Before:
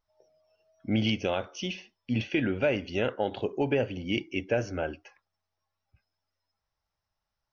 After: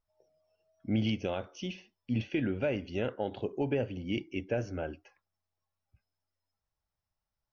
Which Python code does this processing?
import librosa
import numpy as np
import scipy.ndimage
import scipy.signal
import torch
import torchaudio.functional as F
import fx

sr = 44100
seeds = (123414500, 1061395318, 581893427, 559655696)

y = fx.low_shelf(x, sr, hz=490.0, db=6.5)
y = y * librosa.db_to_amplitude(-8.0)